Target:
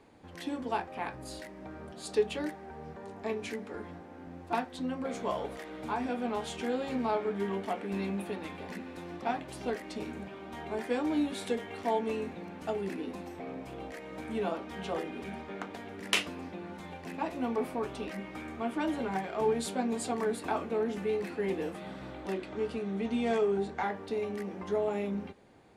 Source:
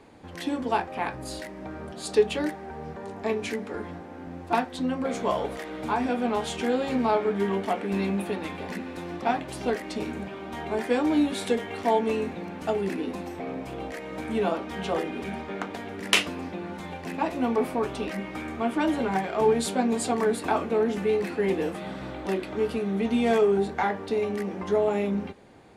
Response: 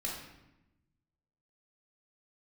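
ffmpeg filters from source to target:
-filter_complex "[0:a]asettb=1/sr,asplit=3[a][b][c];[a]atrim=end=22.324[d];[b]atrim=start=22.32:end=23.8,asetpts=PTS-STARTPTS,afade=t=in:d=0.004:c=qsin,afade=t=out:st=1.476:d=0.004:c=qsin,lowpass=f=9.4k:w=0.5412,lowpass=f=9.4k:w=1.3066[e];[c]atrim=start=23.796[f];[d][e]acrossfade=d=0.004:c1=hsin:c2=qsin[g];[g][f]acrossfade=d=0.004:c1=qsin:c2=hsin,volume=-7dB"

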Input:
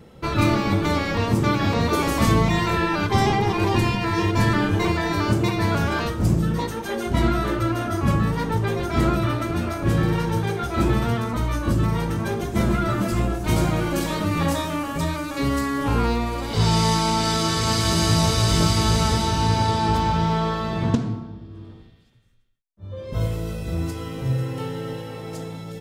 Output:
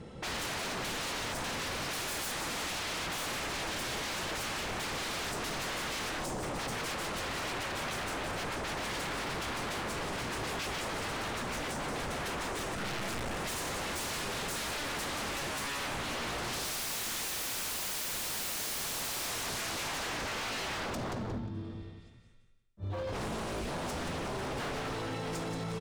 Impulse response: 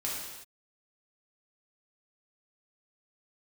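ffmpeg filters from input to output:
-filter_complex "[0:a]aecho=1:1:178|356|534:0.422|0.0928|0.0204,asettb=1/sr,asplit=3[a][b][c];[a]atrim=end=12.754[d];[b]atrim=start=12.75:end=13.37,asetpts=PTS-STARTPTS,afade=t=in:d=0.004:c=qsin,afade=t=out:st=0.616:d=0.004:c=qsin,aeval=exprs='(tanh(10*val(0)+0.55)-tanh(0.55))/10':c=same[e];[c]atrim=start=13.366[f];[d][e]acrossfade=d=0.004:c1=hsin:c2=qsin[g];[g][f]acrossfade=d=0.004:c1=qsin:c2=hsin,acrossover=split=5000[h][i];[h]alimiter=limit=-18dB:level=0:latency=1:release=159[j];[j][i]amix=inputs=2:normalize=0,aresample=22050,aresample=44100,aeval=exprs='0.0266*(abs(mod(val(0)/0.0266+3,4)-2)-1)':c=same"

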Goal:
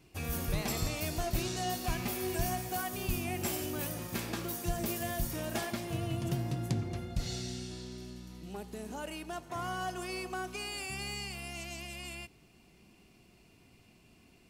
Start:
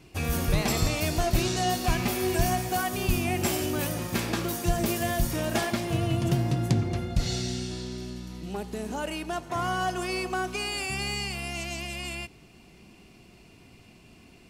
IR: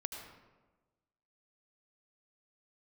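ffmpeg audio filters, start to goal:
-af "highshelf=f=12k:g=8.5,volume=-8.5dB"

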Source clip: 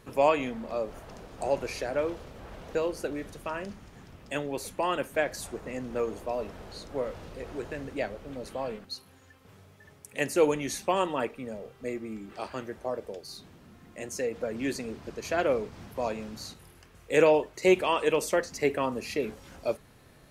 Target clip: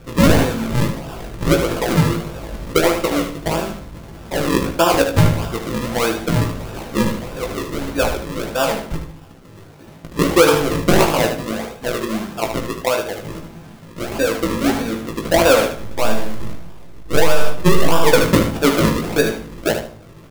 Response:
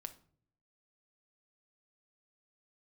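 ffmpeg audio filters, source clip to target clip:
-filter_complex "[0:a]asettb=1/sr,asplit=3[a][b][c];[a]atrim=end=15.734[d];[b]atrim=start=15.73:end=18.07,asetpts=PTS-STARTPTS,afade=t=in:d=0.004:c=qsin,afade=t=out:st=2.336:d=0.004:c=qsin,aeval=exprs='if(lt(val(0),0),0.447*val(0),val(0))':c=same[e];[c]atrim=start=18.066[f];[d][e]acrossfade=d=0.004:c1=hsin:c2=qsin[g];[g][f]acrossfade=d=0.004:c1=qsin:c2=hsin,flanger=delay=0.7:depth=7.5:regen=52:speed=0.76:shape=triangular,acrusher=samples=41:mix=1:aa=0.000001:lfo=1:lforange=41:lforate=1.6,asplit=2[h][i];[i]adelay=18,volume=-6dB[j];[h][j]amix=inputs=2:normalize=0,aecho=1:1:76|152|228:0.398|0.0955|0.0229[k];[1:a]atrim=start_sample=2205[l];[k][l]afir=irnorm=-1:irlink=0,alimiter=level_in=21.5dB:limit=-1dB:release=50:level=0:latency=1,volume=-1dB"

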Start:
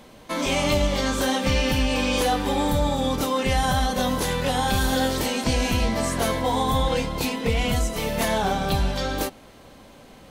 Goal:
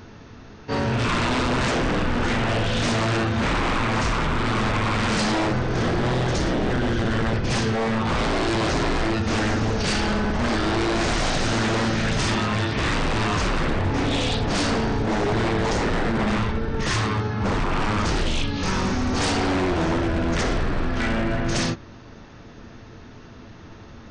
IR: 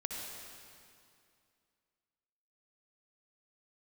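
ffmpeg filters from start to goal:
-af "aeval=exprs='0.0794*(abs(mod(val(0)/0.0794+3,4)-2)-1)':c=same,asetrate=18846,aresample=44100,volume=5dB"

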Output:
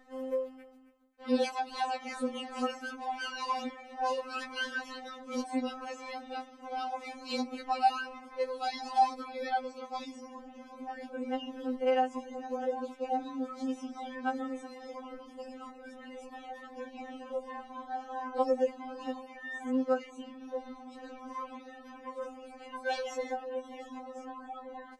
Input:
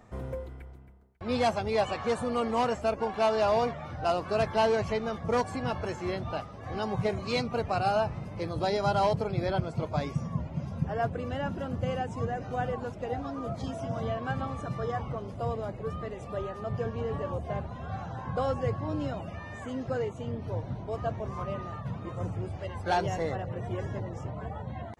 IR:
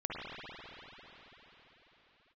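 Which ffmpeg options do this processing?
-af "equalizer=f=130:t=o:w=2.1:g=-4,afftfilt=real='re*3.46*eq(mod(b,12),0)':imag='im*3.46*eq(mod(b,12),0)':win_size=2048:overlap=0.75"

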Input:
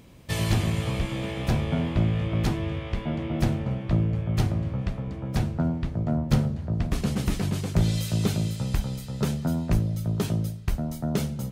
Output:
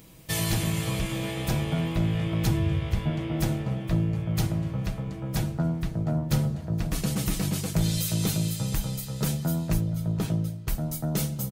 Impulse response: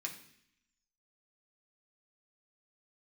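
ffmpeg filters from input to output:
-filter_complex "[0:a]asettb=1/sr,asplit=3[a][b][c];[a]atrim=end=2.474[d];[b]atrim=start=2.47:end=3.1,asetpts=PTS-STARTPTS,afade=t=in:d=0.004:c=qsin,afade=t=out:st=0.626:d=0.004:c=qsin,equalizer=f=83:t=o:w=1.3:g=13.5[e];[c]atrim=start=3.096[f];[d][e]acrossfade=d=0.004:c1=hsin:c2=qsin[g];[g][f]acrossfade=d=0.004:c1=qsin:c2=hsin,asettb=1/sr,asplit=3[h][i][j];[h]atrim=end=9.804[k];[i]atrim=start=9.8:end=10.68,asetpts=PTS-STARTPTS,afade=t=in:d=0.004:c=qsin,afade=t=out:st=0.876:d=0.004:c=qsin,lowpass=f=2.3k:p=1[l];[j]atrim=start=10.676[m];[k][l]acrossfade=d=0.004:c1=hsin:c2=qsin[n];[n][m]acrossfade=d=0.004:c1=qsin:c2=hsin,aemphasis=mode=production:type=50kf,aecho=1:1:6.2:0.48,asplit=2[o][p];[p]alimiter=limit=-16.5dB:level=0:latency=1,volume=-1dB[q];[o][q]amix=inputs=2:normalize=0,aecho=1:1:472:0.15,volume=-7.5dB"

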